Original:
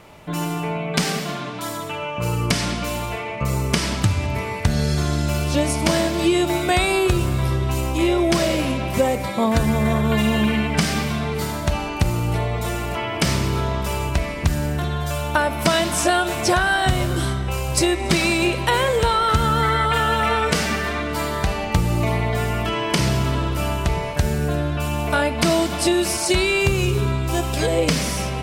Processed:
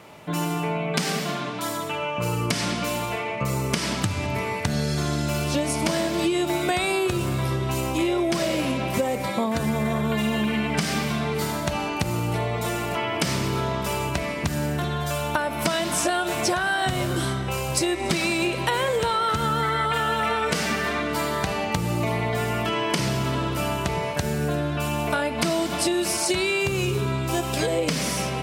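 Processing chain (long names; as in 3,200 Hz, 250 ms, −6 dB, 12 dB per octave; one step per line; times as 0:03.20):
high-pass filter 120 Hz 12 dB per octave
downward compressor, threshold −20 dBFS, peak gain reduction 7.5 dB
0:16.01–0:17.20: surface crackle 23 per second −36 dBFS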